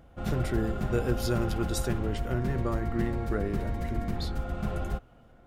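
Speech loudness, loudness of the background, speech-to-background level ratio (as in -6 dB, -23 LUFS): -33.0 LUFS, -34.0 LUFS, 1.0 dB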